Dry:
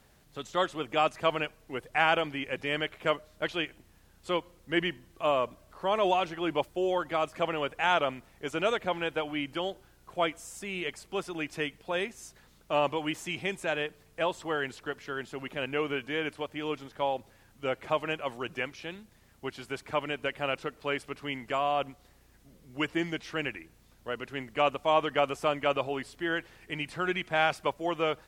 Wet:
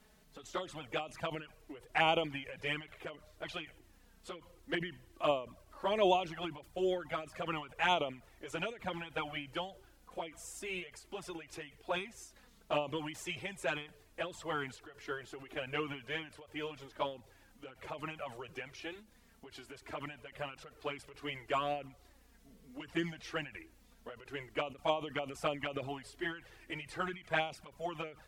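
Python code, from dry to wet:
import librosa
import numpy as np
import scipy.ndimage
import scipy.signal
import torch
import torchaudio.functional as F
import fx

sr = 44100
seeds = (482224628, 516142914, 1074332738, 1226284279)

y = fx.env_flanger(x, sr, rest_ms=4.8, full_db=-22.0)
y = fx.end_taper(y, sr, db_per_s=140.0)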